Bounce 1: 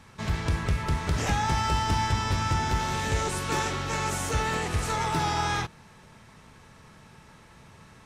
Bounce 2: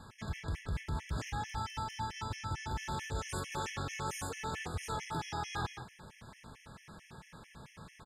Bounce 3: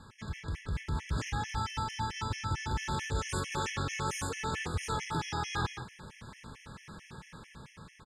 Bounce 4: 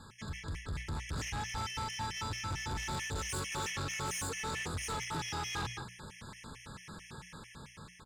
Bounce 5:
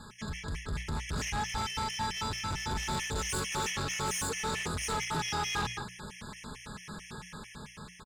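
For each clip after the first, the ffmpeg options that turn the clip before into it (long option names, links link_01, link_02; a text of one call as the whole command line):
ffmpeg -i in.wav -filter_complex "[0:a]asplit=2[link_01][link_02];[link_02]adelay=180.8,volume=-15dB,highshelf=frequency=4000:gain=-4.07[link_03];[link_01][link_03]amix=inputs=2:normalize=0,areverse,acompressor=threshold=-33dB:ratio=16,areverse,afftfilt=real='re*gt(sin(2*PI*4.5*pts/sr)*(1-2*mod(floor(b*sr/1024/1700),2)),0)':imag='im*gt(sin(2*PI*4.5*pts/sr)*(1-2*mod(floor(b*sr/1024/1700),2)),0)':win_size=1024:overlap=0.75,volume=1dB" out.wav
ffmpeg -i in.wav -af "lowpass=10000,equalizer=frequency=700:width_type=o:width=0.37:gain=-9,dynaudnorm=framelen=250:gausssize=7:maxgain=5dB" out.wav
ffmpeg -i in.wav -af "highshelf=frequency=4600:gain=6.5,bandreject=frequency=60:width_type=h:width=6,bandreject=frequency=120:width_type=h:width=6,bandreject=frequency=180:width_type=h:width=6,asoftclip=type=tanh:threshold=-32.5dB" out.wav
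ffmpeg -i in.wav -af "aecho=1:1:4.8:0.37,volume=4dB" out.wav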